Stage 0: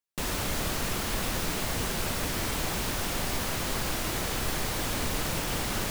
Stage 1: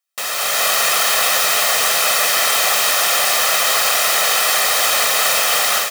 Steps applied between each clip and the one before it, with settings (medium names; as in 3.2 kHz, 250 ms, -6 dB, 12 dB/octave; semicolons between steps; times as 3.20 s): high-pass 790 Hz 12 dB/octave; comb 1.6 ms, depth 63%; level rider gain up to 8 dB; trim +8.5 dB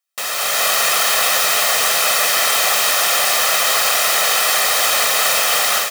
no audible change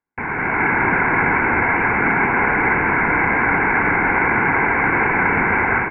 frequency inversion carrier 2.8 kHz; trim +3 dB